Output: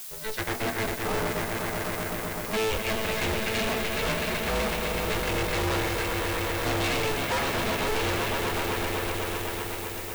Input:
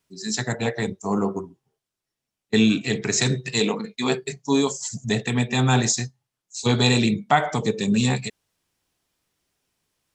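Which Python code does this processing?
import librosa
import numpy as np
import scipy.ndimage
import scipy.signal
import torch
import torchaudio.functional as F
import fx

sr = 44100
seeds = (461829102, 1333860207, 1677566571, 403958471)

y = scipy.signal.sosfilt(scipy.signal.butter(4, 2900.0, 'lowpass', fs=sr, output='sos'), x)
y = fx.tilt_shelf(y, sr, db=-3.5, hz=970.0)
y = fx.echo_swell(y, sr, ms=126, loudest=5, wet_db=-10.5)
y = fx.dmg_noise_colour(y, sr, seeds[0], colour='blue', level_db=-40.0)
y = np.clip(10.0 ** (24.5 / 20.0) * y, -1.0, 1.0) / 10.0 ** (24.5 / 20.0)
y = y * np.sign(np.sin(2.0 * np.pi * 220.0 * np.arange(len(y)) / sr))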